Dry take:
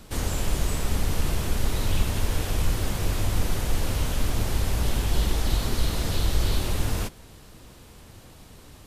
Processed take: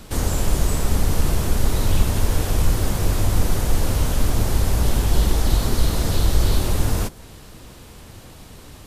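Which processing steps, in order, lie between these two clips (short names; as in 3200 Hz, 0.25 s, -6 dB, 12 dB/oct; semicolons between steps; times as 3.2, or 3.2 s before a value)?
dynamic EQ 2700 Hz, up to -5 dB, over -48 dBFS, Q 0.86; gain +6 dB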